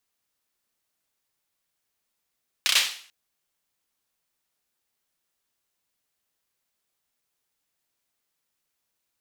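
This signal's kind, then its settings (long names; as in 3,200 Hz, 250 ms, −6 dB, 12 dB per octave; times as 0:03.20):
synth clap length 0.44 s, bursts 4, apart 31 ms, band 3,100 Hz, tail 0.49 s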